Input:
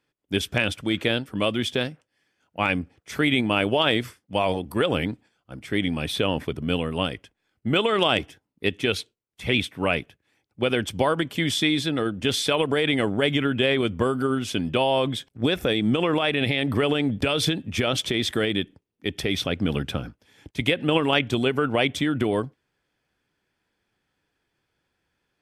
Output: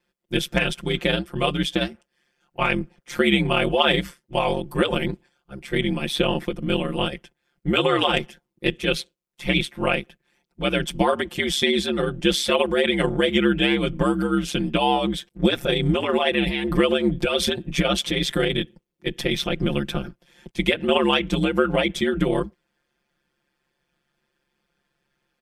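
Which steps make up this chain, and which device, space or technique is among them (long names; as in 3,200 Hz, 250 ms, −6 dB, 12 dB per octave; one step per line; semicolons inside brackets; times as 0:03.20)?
ring-modulated robot voice (ring modulation 69 Hz; comb filter 5.7 ms, depth 98%)
level +1.5 dB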